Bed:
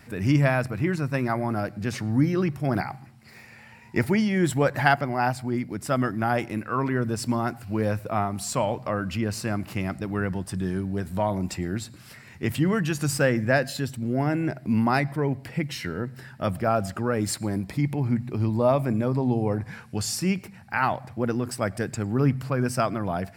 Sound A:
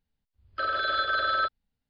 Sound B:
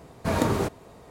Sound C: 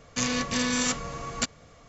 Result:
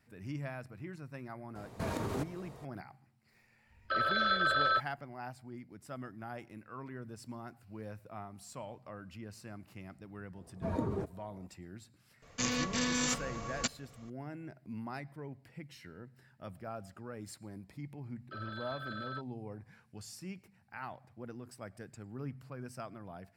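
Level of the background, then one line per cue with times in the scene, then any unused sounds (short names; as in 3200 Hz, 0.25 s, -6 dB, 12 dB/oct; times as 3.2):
bed -20 dB
1.55 add B -3.5 dB + compressor, threshold -29 dBFS
3.32 add A -3 dB
10.37 add B -10.5 dB + spectral contrast raised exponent 1.6
12.22 add C -6 dB
17.73 add A -17.5 dB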